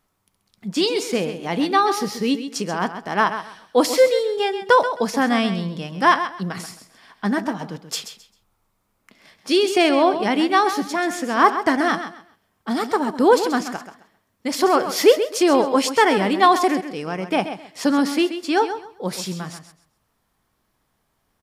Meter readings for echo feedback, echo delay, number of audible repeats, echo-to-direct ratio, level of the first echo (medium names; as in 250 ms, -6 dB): 23%, 132 ms, 2, -10.5 dB, -10.5 dB